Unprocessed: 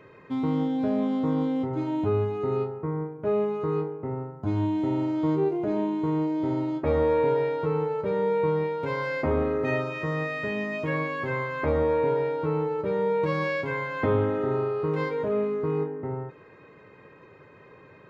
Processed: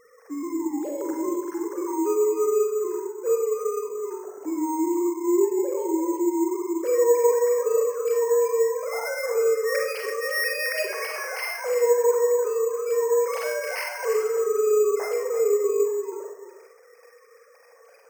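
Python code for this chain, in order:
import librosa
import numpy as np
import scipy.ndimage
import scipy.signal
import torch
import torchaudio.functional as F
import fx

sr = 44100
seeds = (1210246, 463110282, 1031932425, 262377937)

y = fx.sine_speech(x, sr)
y = fx.lowpass_res(y, sr, hz=1600.0, q=3.0, at=(1.01, 1.94))
y = y + 10.0 ** (-10.5 / 20.0) * np.pad(y, (int(338 * sr / 1000.0), 0))[:len(y)]
y = fx.rev_schroeder(y, sr, rt60_s=0.59, comb_ms=33, drr_db=2.0)
y = np.repeat(scipy.signal.resample_poly(y, 1, 6), 6)[:len(y)]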